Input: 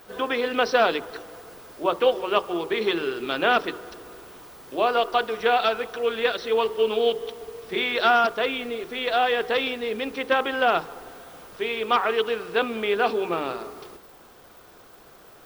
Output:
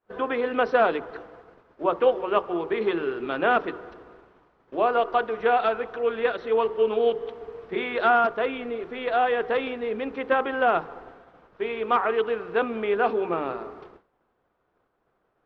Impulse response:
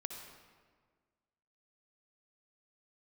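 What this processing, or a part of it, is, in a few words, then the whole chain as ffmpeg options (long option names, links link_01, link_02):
hearing-loss simulation: -af "lowpass=1800,agate=range=-33dB:threshold=-40dB:ratio=3:detection=peak"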